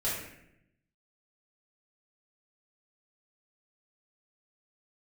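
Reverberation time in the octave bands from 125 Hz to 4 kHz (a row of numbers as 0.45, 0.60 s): 1.2, 1.1, 0.85, 0.70, 0.80, 0.60 s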